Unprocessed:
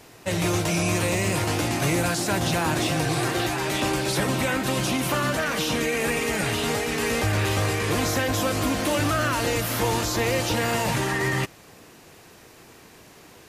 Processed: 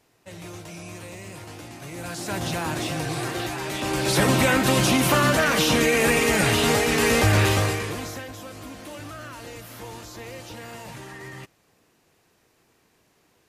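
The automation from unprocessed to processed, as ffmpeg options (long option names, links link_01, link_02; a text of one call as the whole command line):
ffmpeg -i in.wav -af "volume=5dB,afade=type=in:start_time=1.91:duration=0.48:silence=0.266073,afade=type=in:start_time=3.83:duration=0.42:silence=0.354813,afade=type=out:start_time=7.4:duration=0.53:silence=0.237137,afade=type=out:start_time=7.93:duration=0.42:silence=0.421697" out.wav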